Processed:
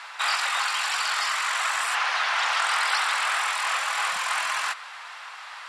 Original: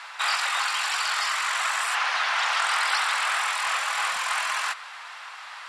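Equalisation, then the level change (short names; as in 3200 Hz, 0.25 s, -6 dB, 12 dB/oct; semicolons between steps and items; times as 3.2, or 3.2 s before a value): low shelf 170 Hz +10 dB; 0.0 dB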